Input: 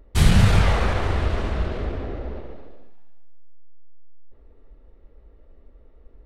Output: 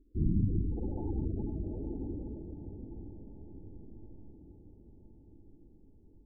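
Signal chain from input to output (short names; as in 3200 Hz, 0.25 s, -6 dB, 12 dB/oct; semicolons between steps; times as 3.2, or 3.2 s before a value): vocal tract filter u; treble ducked by the level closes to 520 Hz, closed at -28.5 dBFS; spectral gate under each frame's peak -20 dB strong; on a send: diffused feedback echo 0.93 s, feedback 54%, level -10 dB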